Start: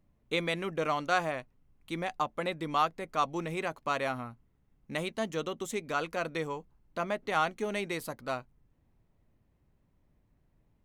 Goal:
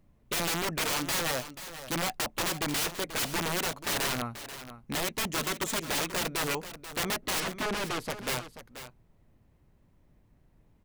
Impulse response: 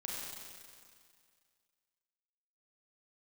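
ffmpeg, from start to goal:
-filter_complex "[0:a]aeval=exprs='(mod(33.5*val(0)+1,2)-1)/33.5':c=same,asettb=1/sr,asplit=3[a][b][c];[a]atrim=end=7.404[d];[b]atrim=start=7.4:end=8.1,asetpts=PTS-STARTPTS,afade=t=in:d=0.004:c=qsin,afade=t=out:st=0.696:d=0.004:c=qsin,aemphasis=mode=reproduction:type=50fm[e];[c]atrim=start=8.096[f];[d][e]acrossfade=d=0.004:c1=hsin:c2=qsin[g];[g][f]acrossfade=d=0.004:c1=qsin:c2=hsin,aecho=1:1:485:0.237,volume=6dB"

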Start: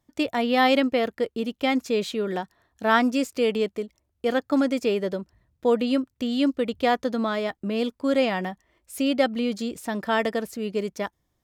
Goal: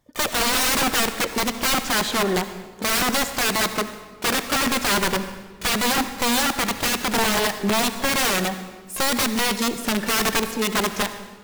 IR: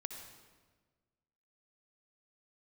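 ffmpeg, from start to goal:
-filter_complex "[0:a]aeval=exprs='(mod(12.6*val(0)+1,2)-1)/12.6':c=same,asplit=2[a][b];[1:a]atrim=start_sample=2205[c];[b][c]afir=irnorm=-1:irlink=0,volume=3dB[d];[a][d]amix=inputs=2:normalize=0,asplit=2[e][f];[f]asetrate=88200,aresample=44100,atempo=0.5,volume=-12dB[g];[e][g]amix=inputs=2:normalize=0"

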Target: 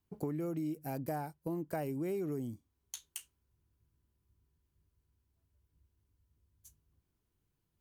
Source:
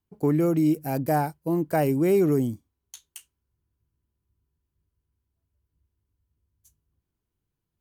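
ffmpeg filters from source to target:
-af "acompressor=threshold=-39dB:ratio=4,volume=1dB"

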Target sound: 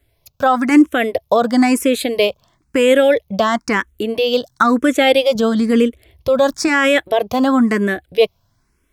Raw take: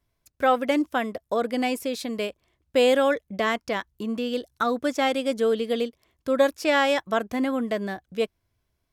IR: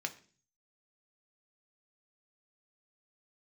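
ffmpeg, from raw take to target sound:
-filter_complex "[0:a]asettb=1/sr,asplit=3[a][b][c];[a]atrim=end=5.354[d];[b]atrim=start=5.35:end=6.68,asetpts=PTS-STARTPTS,afade=t=in:d=0.004:c=qsin,afade=t=out:st=1.326:d=0.004:c=qsin,lowshelf=f=150:g=11[e];[c]atrim=start=6.676[f];[d][e]acrossfade=d=0.004:c1=hsin:c2=qsin[g];[g][f]acrossfade=d=0.004:c1=qsin:c2=hsin,alimiter=level_in=16.5dB:limit=-1dB:release=50:level=0:latency=1,asplit=2[h][i];[i]afreqshift=1[j];[h][j]amix=inputs=2:normalize=1,volume=-1dB"

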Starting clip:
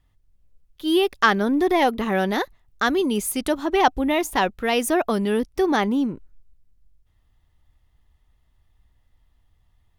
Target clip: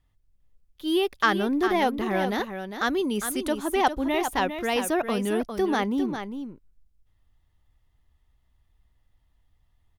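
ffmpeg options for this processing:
-af "aecho=1:1:403:0.376,volume=-4.5dB"

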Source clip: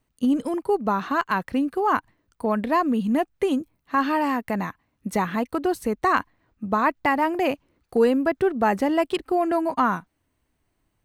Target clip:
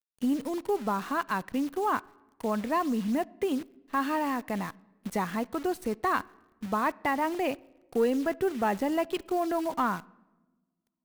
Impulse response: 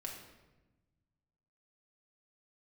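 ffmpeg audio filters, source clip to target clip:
-filter_complex "[0:a]asoftclip=type=tanh:threshold=-9dB,acrusher=bits=7:dc=4:mix=0:aa=0.000001,asplit=2[a][b];[1:a]atrim=start_sample=2205,asetrate=41895,aresample=44100,lowpass=4.9k[c];[b][c]afir=irnorm=-1:irlink=0,volume=-18dB[d];[a][d]amix=inputs=2:normalize=0,volume=-6.5dB"

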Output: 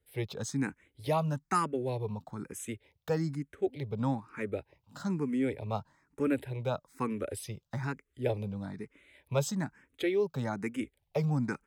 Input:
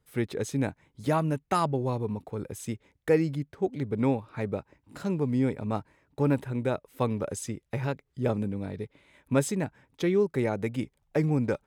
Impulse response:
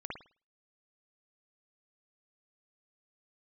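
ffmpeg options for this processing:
-filter_complex "[0:a]acrossover=split=480|1100[a][b][c];[c]dynaudnorm=f=110:g=3:m=3.5dB[d];[a][b][d]amix=inputs=3:normalize=0,asplit=2[e][f];[f]afreqshift=1.1[g];[e][g]amix=inputs=2:normalize=1,volume=-2dB"

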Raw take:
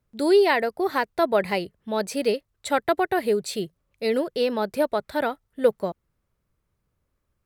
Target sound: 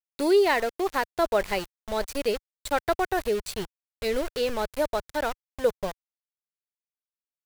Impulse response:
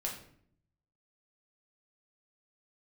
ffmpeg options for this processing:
-af "acontrast=20,aeval=exprs='val(0)*gte(abs(val(0)),0.0562)':c=same,asubboost=boost=11.5:cutoff=69,volume=-6.5dB"

